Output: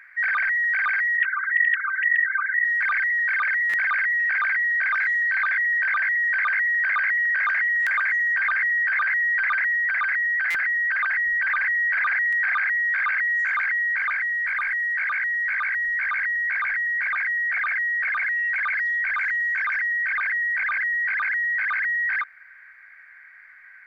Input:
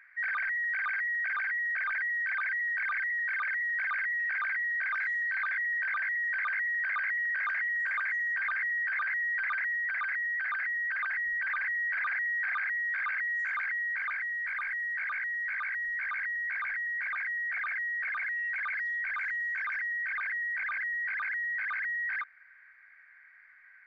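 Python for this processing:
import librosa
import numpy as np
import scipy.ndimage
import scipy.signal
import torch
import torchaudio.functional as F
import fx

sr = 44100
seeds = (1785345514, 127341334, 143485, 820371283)

y = fx.sine_speech(x, sr, at=(1.17, 2.65))
y = fx.highpass(y, sr, hz=320.0, slope=6, at=(14.73, 15.2))
y = fx.buffer_glitch(y, sr, at_s=(2.76, 3.69, 7.82, 10.5, 12.28), block=256, repeats=7)
y = y * 10.0 ** (9.0 / 20.0)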